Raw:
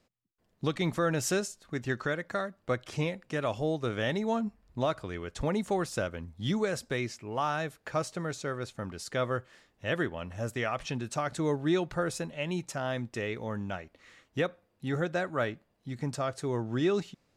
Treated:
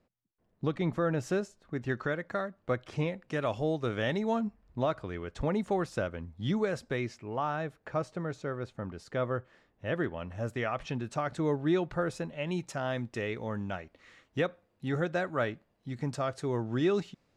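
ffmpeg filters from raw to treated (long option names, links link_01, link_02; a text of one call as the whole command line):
ffmpeg -i in.wav -af "asetnsamples=nb_out_samples=441:pad=0,asendcmd='1.81 lowpass f 2200;3.28 lowpass f 4600;4.47 lowpass f 2400;7.36 lowpass f 1300;10.04 lowpass f 2400;12.47 lowpass f 5000',lowpass=frequency=1200:poles=1" out.wav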